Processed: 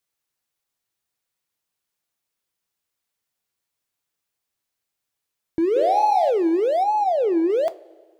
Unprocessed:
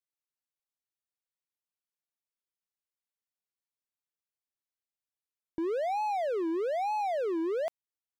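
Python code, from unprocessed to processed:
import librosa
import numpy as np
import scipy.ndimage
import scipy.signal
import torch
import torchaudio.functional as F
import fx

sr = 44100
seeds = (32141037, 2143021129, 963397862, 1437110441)

p1 = fx.lowpass(x, sr, hz=2100.0, slope=6, at=(6.83, 7.5))
p2 = np.clip(p1, -10.0 ** (-34.0 / 20.0), 10.0 ** (-34.0 / 20.0))
p3 = p1 + (p2 * 10.0 ** (-4.5 / 20.0))
p4 = fx.room_flutter(p3, sr, wall_m=10.3, rt60_s=0.69, at=(5.75, 6.29), fade=0.02)
p5 = fx.rev_double_slope(p4, sr, seeds[0], early_s=0.24, late_s=1.7, knee_db=-18, drr_db=11.5)
y = p5 * 10.0 ** (8.0 / 20.0)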